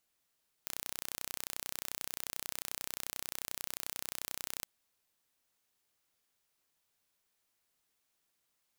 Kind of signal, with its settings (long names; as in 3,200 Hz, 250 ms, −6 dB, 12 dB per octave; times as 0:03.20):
impulse train 31.3 per second, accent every 0, −11 dBFS 3.97 s